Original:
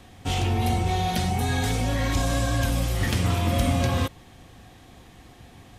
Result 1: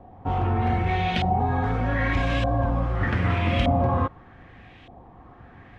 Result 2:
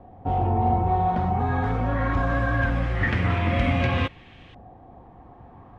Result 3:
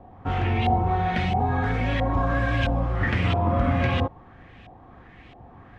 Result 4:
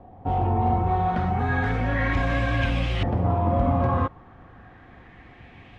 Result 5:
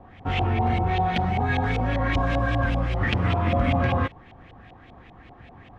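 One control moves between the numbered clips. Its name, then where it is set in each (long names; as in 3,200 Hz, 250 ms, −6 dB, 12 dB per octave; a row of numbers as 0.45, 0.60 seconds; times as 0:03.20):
auto-filter low-pass, speed: 0.82, 0.22, 1.5, 0.33, 5.1 Hertz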